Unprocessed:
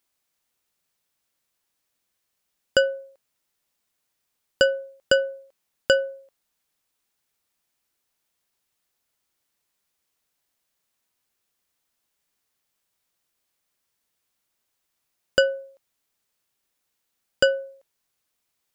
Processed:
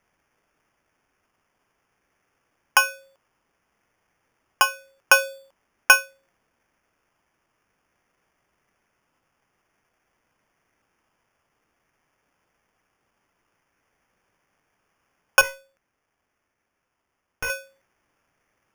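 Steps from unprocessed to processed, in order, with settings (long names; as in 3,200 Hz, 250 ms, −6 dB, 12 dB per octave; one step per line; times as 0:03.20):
auto-filter high-pass sine 0.51 Hz 950–2,400 Hz
0:15.41–0:17.50: tube saturation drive 30 dB, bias 0.8
decimation without filtering 11×
level +4 dB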